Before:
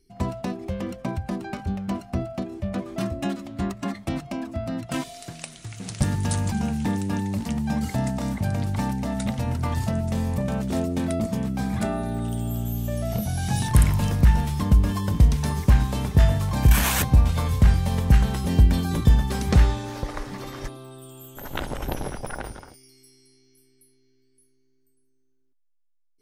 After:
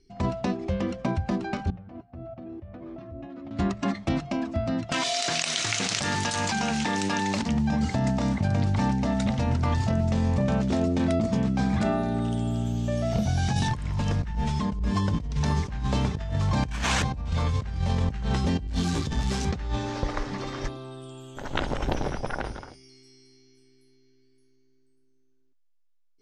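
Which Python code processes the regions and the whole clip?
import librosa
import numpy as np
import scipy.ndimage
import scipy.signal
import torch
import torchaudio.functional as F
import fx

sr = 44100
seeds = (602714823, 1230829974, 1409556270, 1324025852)

y = fx.chain(x, sr, fx.spacing_loss(db_at_10k=34),
    fx.level_steps(step_db=20),
    fx.notch_comb(f0_hz=200.0), at=(1.7, 3.51))
y = fx.chain(y, sr, fx.highpass(hz=1200.0, slope=6),
    fx.env_flatten(amount_pct=100), at=(4.92, 7.42))
y = fx.chain(y, sr, fx.resample_bad(factor=2, down='none', up='filtered'),
    fx.comb(ms=4.7, depth=0.67),
    fx.level_steps(step_db=14), at=(14.35, 14.95))
y = fx.chain(y, sr, fx.crossing_spikes(level_db=-17.0),
    fx.detune_double(cents=27), at=(18.67, 19.45))
y = scipy.signal.sosfilt(scipy.signal.butter(4, 6700.0, 'lowpass', fs=sr, output='sos'), y)
y = fx.hum_notches(y, sr, base_hz=60, count=3)
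y = fx.over_compress(y, sr, threshold_db=-25.0, ratio=-1.0)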